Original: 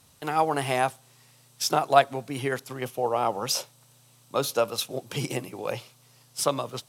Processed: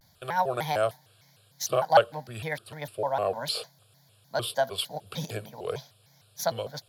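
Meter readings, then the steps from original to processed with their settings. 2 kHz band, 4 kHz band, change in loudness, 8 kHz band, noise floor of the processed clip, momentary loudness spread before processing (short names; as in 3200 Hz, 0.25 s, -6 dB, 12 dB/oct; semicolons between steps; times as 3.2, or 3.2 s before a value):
-1.5 dB, -1.5 dB, -2.0 dB, -5.5 dB, -62 dBFS, 12 LU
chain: fixed phaser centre 1600 Hz, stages 8; shaped vibrato square 3.3 Hz, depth 250 cents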